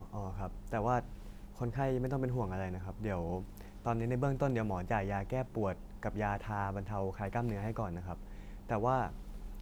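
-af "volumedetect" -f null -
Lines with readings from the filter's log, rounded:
mean_volume: -36.1 dB
max_volume: -19.0 dB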